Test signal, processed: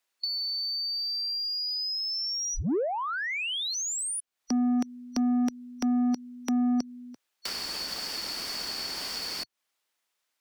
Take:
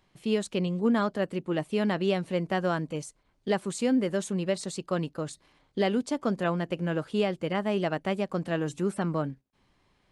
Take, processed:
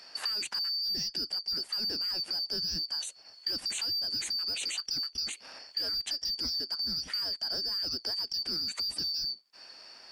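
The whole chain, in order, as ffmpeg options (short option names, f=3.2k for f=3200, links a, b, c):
-filter_complex "[0:a]afftfilt=real='real(if(lt(b,272),68*(eq(floor(b/68),0)*1+eq(floor(b/68),1)*2+eq(floor(b/68),2)*3+eq(floor(b/68),3)*0)+mod(b,68),b),0)':imag='imag(if(lt(b,272),68*(eq(floor(b/68),0)*1+eq(floor(b/68),1)*2+eq(floor(b/68),2)*3+eq(floor(b/68),3)*0)+mod(b,68),b),0)':win_size=2048:overlap=0.75,adynamicequalizer=threshold=0.00178:dfrequency=1200:dqfactor=3:tfrequency=1200:tqfactor=3:attack=5:release=100:ratio=0.375:range=3.5:mode=cutabove:tftype=bell,asplit=2[a][b];[b]highpass=f=720:p=1,volume=15dB,asoftclip=type=tanh:threshold=-12dB[c];[a][c]amix=inputs=2:normalize=0,lowpass=f=5.1k:p=1,volume=-6dB,acrossover=split=490[d][e];[d]asoftclip=type=tanh:threshold=-31.5dB[f];[f][e]amix=inputs=2:normalize=0,alimiter=limit=-22.5dB:level=0:latency=1:release=33,acrossover=split=310[g][h];[h]acompressor=threshold=-42dB:ratio=5[i];[g][i]amix=inputs=2:normalize=0,equalizer=f=120:t=o:w=0.36:g=-14,volume=9dB"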